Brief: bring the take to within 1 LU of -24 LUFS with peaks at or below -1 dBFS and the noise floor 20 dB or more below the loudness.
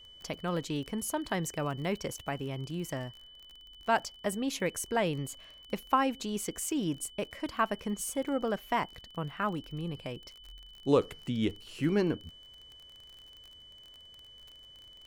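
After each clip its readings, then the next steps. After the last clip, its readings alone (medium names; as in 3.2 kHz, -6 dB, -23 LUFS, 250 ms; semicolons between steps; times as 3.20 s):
tick rate 31 per s; steady tone 3 kHz; tone level -51 dBFS; loudness -33.5 LUFS; peak level -13.0 dBFS; loudness target -24.0 LUFS
-> de-click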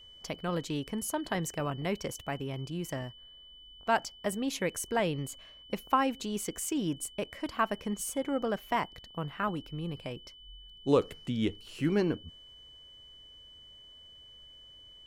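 tick rate 0 per s; steady tone 3 kHz; tone level -51 dBFS
-> band-stop 3 kHz, Q 30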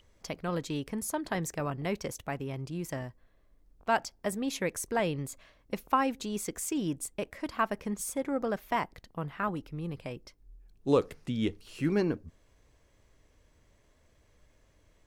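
steady tone not found; loudness -33.5 LUFS; peak level -13.0 dBFS; loudness target -24.0 LUFS
-> trim +9.5 dB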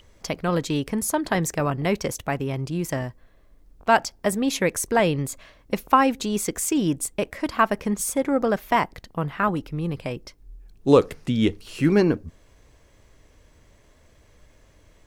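loudness -24.0 LUFS; peak level -3.5 dBFS; noise floor -57 dBFS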